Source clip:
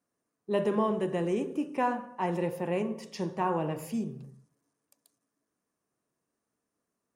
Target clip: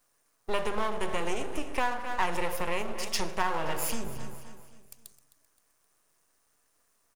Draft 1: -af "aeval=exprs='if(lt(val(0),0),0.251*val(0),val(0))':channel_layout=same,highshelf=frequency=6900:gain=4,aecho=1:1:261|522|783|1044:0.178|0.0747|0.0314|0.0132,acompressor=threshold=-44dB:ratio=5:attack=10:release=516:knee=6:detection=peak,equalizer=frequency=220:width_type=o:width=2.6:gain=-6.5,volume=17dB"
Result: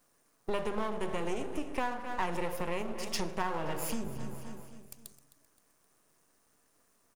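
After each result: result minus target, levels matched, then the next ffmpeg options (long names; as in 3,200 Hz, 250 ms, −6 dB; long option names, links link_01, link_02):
downward compressor: peak gain reduction +7 dB; 250 Hz band +4.5 dB
-af "aeval=exprs='if(lt(val(0),0),0.251*val(0),val(0))':channel_layout=same,highshelf=frequency=6900:gain=4,aecho=1:1:261|522|783|1044:0.178|0.0747|0.0314|0.0132,acompressor=threshold=-35dB:ratio=5:attack=10:release=516:knee=6:detection=peak,equalizer=frequency=220:width_type=o:width=2.6:gain=-6.5,volume=17dB"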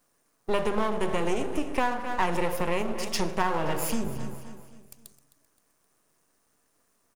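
250 Hz band +4.5 dB
-af "aeval=exprs='if(lt(val(0),0),0.251*val(0),val(0))':channel_layout=same,highshelf=frequency=6900:gain=4,aecho=1:1:261|522|783|1044:0.178|0.0747|0.0314|0.0132,acompressor=threshold=-35dB:ratio=5:attack=10:release=516:knee=6:detection=peak,equalizer=frequency=220:width_type=o:width=2.6:gain=-15,volume=17dB"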